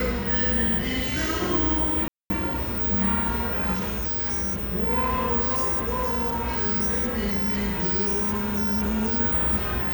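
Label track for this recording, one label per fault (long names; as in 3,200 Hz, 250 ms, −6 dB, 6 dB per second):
2.080000	2.300000	drop-out 221 ms
3.730000	4.640000	clipping −24 dBFS
5.400000	9.200000	clipping −21 dBFS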